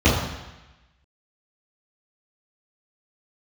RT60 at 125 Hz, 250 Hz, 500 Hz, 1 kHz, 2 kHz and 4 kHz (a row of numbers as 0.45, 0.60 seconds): 1.1, 1.0, 0.95, 1.1, 1.2, 1.1 seconds